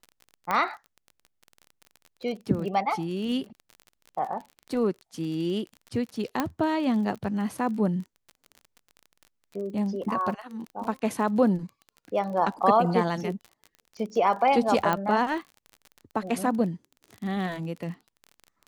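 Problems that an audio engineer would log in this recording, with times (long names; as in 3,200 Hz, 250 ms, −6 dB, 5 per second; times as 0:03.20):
surface crackle 33 per second −35 dBFS
0:00.51: click −13 dBFS
0:06.40: click −11 dBFS
0:10.84: drop-out 2.1 ms
0:14.93: click −12 dBFS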